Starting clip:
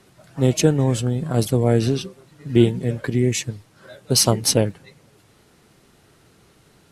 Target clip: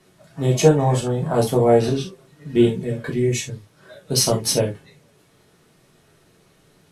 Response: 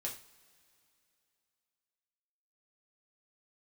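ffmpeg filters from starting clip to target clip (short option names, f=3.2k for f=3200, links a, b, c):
-filter_complex "[0:a]asettb=1/sr,asplit=3[a][b][c];[a]atrim=end=0.544[d];[b]atrim=start=0.54:end=1.9,asetpts=PTS-STARTPTS,afade=t=in:d=0.004:c=qsin,afade=t=out:st=1.356:d=0.004:c=qsin,equalizer=f=840:w=1.1:g=12.5[e];[c]atrim=start=1.896[f];[d][e]acrossfade=d=0.004:c1=hsin:c2=qsin[g];[g][f]acrossfade=d=0.004:c1=qsin:c2=hsin[h];[1:a]atrim=start_sample=2205,atrim=end_sample=3528[i];[h][i]afir=irnorm=-1:irlink=0,volume=-1dB"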